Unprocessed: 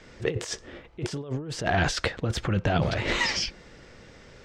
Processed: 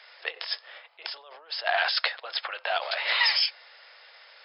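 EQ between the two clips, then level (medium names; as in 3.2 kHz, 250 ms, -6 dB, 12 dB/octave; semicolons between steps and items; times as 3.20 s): steep high-pass 630 Hz 36 dB/octave; brick-wall FIR low-pass 5.3 kHz; treble shelf 3.7 kHz +11 dB; 0.0 dB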